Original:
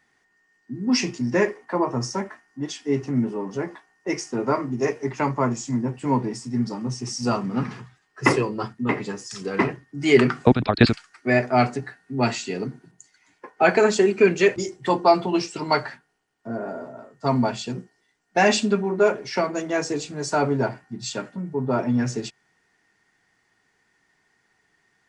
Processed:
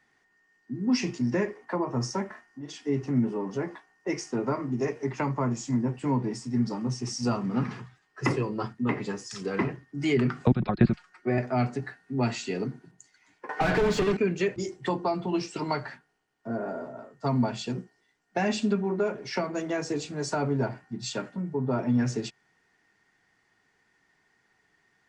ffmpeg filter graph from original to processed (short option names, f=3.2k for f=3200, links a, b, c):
-filter_complex "[0:a]asettb=1/sr,asplit=3[a][b][c];[a]atrim=end=2.264[d];[b]atrim=start=2.26:end=2.78,asetpts=PTS-STARTPTS,afade=t=in:d=0.004:c=qsin,afade=t=out:st=0.516:d=0.004:c=qsin,acompressor=threshold=-36dB:ratio=4:attack=3.2:release=140:knee=1:detection=peak,asplit=2[e][f];[f]adelay=42,volume=-6dB[g];[e][g]amix=inputs=2:normalize=0,atrim=end_sample=22932[h];[c]atrim=start=2.776[i];[d][h]acrossfade=d=0.004:c1=hsin:c2=qsin[j];[j][i]acrossfade=d=0.004:c1=qsin:c2=hsin,asettb=1/sr,asplit=3[k][l][m];[k]atrim=end=10.564[n];[l]atrim=start=10.56:end=11.38,asetpts=PTS-STARTPTS,afade=t=in:d=0.004:c=qsin,afade=t=out:st=0.816:d=0.004:c=qsin,acrossover=split=2700[o][p];[p]acompressor=threshold=-34dB:ratio=4:attack=1:release=60[q];[o][q]amix=inputs=2:normalize=0,highshelf=f=2.4k:g=-9.5,aecho=1:1:5.5:0.63,atrim=end_sample=36162[r];[m]atrim=start=11.376[s];[n][r]acrossfade=d=0.004:c1=hsin:c2=qsin[t];[t][s]acrossfade=d=0.004:c1=qsin:c2=hsin,asettb=1/sr,asplit=3[u][v][w];[u]atrim=end=13.494[x];[v]atrim=start=13.49:end=14.17,asetpts=PTS-STARTPTS,afade=t=in:d=0.004:c=qsin,afade=t=out:st=0.676:d=0.004:c=qsin,asplit=2[y][z];[z]highpass=f=720:p=1,volume=33dB,asoftclip=type=tanh:threshold=-5.5dB[aa];[y][aa]amix=inputs=2:normalize=0,lowpass=f=2.1k:p=1,volume=-6dB,aecho=1:1:6.7:0.53,atrim=end_sample=29988[ab];[w]atrim=start=14.166[ac];[x][ab]acrossfade=d=0.004:c1=hsin:c2=qsin[ad];[ad][ac]acrossfade=d=0.004:c1=qsin:c2=hsin,highshelf=f=8.6k:g=-8.5,acrossover=split=240[ae][af];[af]acompressor=threshold=-26dB:ratio=4[ag];[ae][ag]amix=inputs=2:normalize=0,volume=-1.5dB"